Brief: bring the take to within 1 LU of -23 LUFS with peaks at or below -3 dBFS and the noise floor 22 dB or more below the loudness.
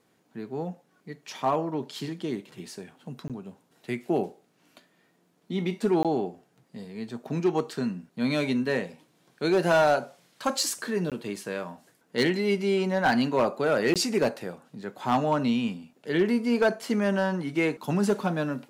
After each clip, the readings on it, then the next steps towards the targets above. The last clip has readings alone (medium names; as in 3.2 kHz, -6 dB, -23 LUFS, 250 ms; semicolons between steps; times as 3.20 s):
clipped samples 0.5%; clipping level -16.0 dBFS; dropouts 4; longest dropout 17 ms; loudness -27.0 LUFS; peak level -16.0 dBFS; loudness target -23.0 LUFS
-> clip repair -16 dBFS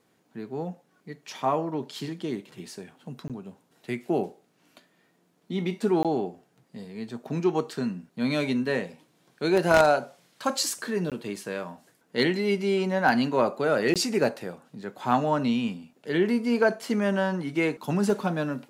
clipped samples 0.0%; dropouts 4; longest dropout 17 ms
-> interpolate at 3.28/6.03/11.10/13.94 s, 17 ms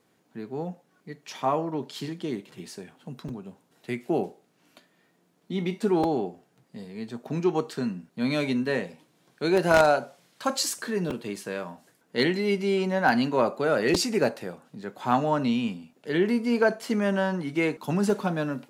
dropouts 0; loudness -26.5 LUFS; peak level -7.0 dBFS; loudness target -23.0 LUFS
-> trim +3.5 dB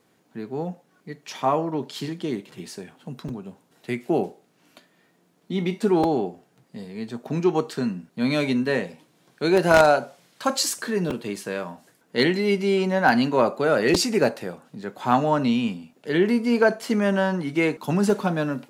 loudness -23.0 LUFS; peak level -3.5 dBFS; noise floor -64 dBFS